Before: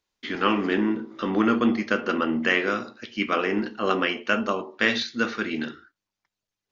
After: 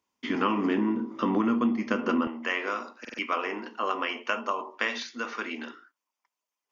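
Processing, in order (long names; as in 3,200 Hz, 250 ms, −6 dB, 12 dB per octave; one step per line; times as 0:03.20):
thirty-one-band graphic EQ 250 Hz +10 dB, 1,000 Hz +9 dB, 1,600 Hz −5 dB, 4,000 Hz −11 dB
downward compressor 6 to 1, threshold −22 dBFS, peak gain reduction 11.5 dB
high-pass filter 94 Hz 12 dB per octave, from 0:02.27 540 Hz
buffer that repeats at 0:03.00, samples 2,048, times 3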